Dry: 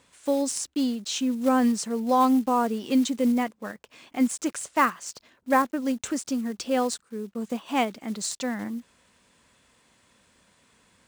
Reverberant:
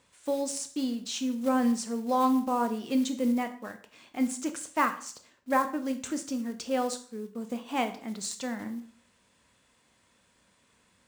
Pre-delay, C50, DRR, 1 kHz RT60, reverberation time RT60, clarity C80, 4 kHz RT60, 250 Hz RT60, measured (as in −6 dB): 7 ms, 13.0 dB, 7.5 dB, 0.45 s, 0.50 s, 16.5 dB, 0.45 s, 0.50 s